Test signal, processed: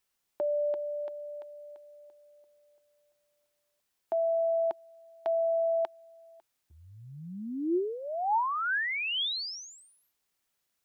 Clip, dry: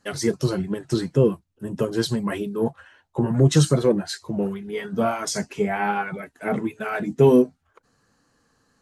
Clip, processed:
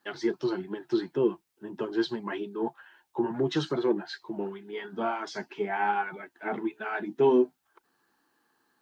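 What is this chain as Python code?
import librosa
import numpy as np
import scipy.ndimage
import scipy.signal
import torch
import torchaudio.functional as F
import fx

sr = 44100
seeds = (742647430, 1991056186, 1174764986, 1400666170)

y = fx.cabinet(x, sr, low_hz=270.0, low_slope=12, high_hz=4600.0, hz=(350.0, 520.0, 880.0, 1600.0, 3300.0), db=(10, -8, 9, 5, 4))
y = fx.quant_dither(y, sr, seeds[0], bits=12, dither='triangular')
y = F.gain(torch.from_numpy(y), -8.0).numpy()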